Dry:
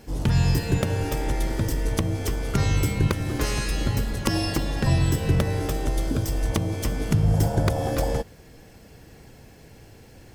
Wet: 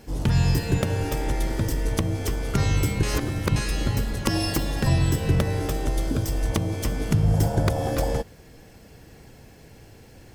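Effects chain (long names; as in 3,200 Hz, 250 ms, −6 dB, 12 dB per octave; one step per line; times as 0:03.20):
0:03.03–0:03.56: reverse
0:04.40–0:04.89: high-shelf EQ 10,000 Hz +9 dB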